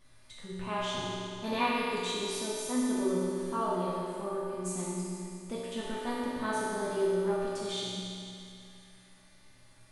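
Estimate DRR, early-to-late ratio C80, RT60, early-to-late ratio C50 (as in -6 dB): -9.0 dB, -2.0 dB, 2.6 s, -4.0 dB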